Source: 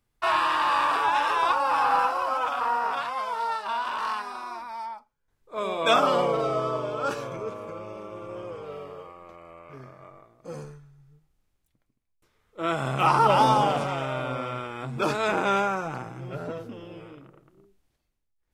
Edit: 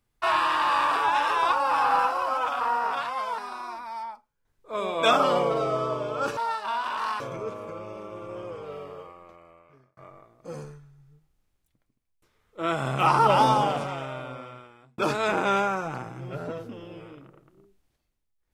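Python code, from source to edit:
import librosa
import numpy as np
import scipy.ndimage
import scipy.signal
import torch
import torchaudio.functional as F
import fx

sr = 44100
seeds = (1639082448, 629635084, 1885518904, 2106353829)

y = fx.edit(x, sr, fx.move(start_s=3.38, length_s=0.83, to_s=7.2),
    fx.fade_out_span(start_s=9.0, length_s=0.97),
    fx.fade_out_span(start_s=13.39, length_s=1.59), tone=tone)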